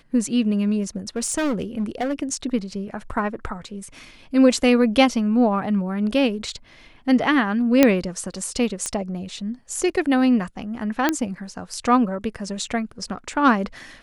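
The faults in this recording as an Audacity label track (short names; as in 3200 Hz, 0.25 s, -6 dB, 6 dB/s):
1.160000	2.130000	clipped -19.5 dBFS
7.830000	7.830000	pop 0 dBFS
8.860000	8.860000	pop -12 dBFS
11.090000	11.090000	pop -5 dBFS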